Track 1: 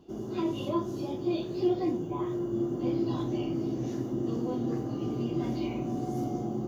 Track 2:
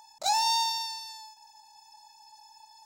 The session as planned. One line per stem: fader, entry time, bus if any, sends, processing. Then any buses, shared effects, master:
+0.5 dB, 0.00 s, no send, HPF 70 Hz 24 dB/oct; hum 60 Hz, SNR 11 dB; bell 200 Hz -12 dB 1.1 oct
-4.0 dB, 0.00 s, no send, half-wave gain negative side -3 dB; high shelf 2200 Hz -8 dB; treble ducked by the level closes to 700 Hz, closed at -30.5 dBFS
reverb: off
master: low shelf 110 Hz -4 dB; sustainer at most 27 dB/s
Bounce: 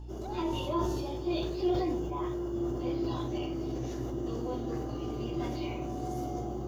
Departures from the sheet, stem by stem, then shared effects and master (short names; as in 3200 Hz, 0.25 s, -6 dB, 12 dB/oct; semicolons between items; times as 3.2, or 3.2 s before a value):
stem 2 -4.0 dB -> -10.0 dB; master: missing low shelf 110 Hz -4 dB